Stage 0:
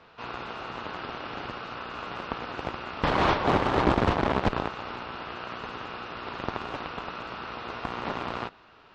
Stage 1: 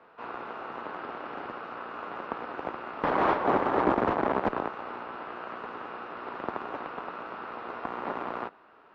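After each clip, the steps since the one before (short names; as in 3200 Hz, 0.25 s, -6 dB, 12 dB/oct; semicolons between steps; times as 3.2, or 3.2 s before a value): three-band isolator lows -16 dB, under 210 Hz, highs -17 dB, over 2000 Hz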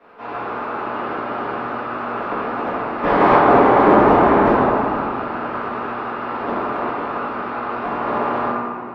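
reverb RT60 2.4 s, pre-delay 4 ms, DRR -12.5 dB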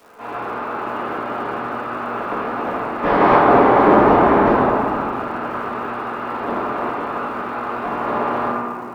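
crackle 580/s -44 dBFS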